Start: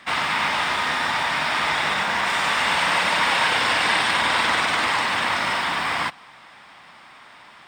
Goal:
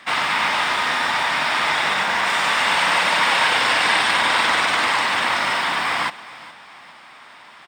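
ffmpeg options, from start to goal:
ffmpeg -i in.wav -af "lowshelf=frequency=170:gain=-8,aecho=1:1:414|828|1242:0.119|0.044|0.0163,volume=2.5dB" out.wav

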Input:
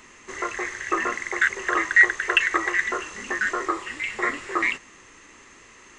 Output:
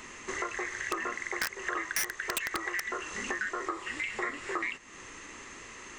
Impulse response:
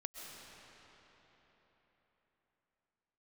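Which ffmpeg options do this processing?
-af "aeval=exprs='(mod(3.35*val(0)+1,2)-1)/3.35':channel_layout=same,acompressor=threshold=-36dB:ratio=4,volume=3dB"

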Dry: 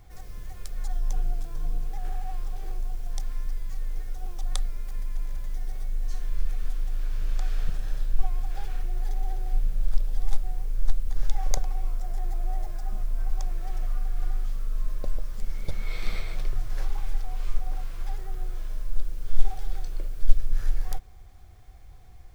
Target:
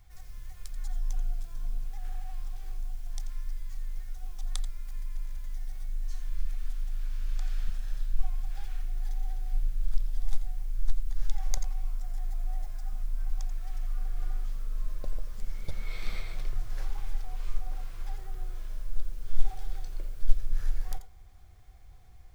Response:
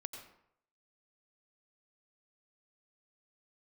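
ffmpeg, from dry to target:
-filter_complex "[0:a]asetnsamples=nb_out_samples=441:pad=0,asendcmd='13.98 equalizer g -2.5',equalizer=frequency=350:width_type=o:width=2.4:gain=-12[link_01];[1:a]atrim=start_sample=2205,atrim=end_sample=3969[link_02];[link_01][link_02]afir=irnorm=-1:irlink=0"

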